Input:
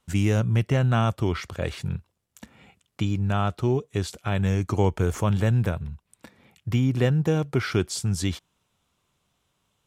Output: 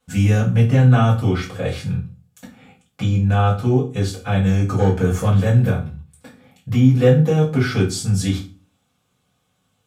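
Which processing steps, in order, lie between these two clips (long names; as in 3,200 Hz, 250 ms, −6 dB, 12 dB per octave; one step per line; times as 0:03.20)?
gain into a clipping stage and back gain 11.5 dB
convolution reverb RT60 0.35 s, pre-delay 3 ms, DRR −8 dB
level −4 dB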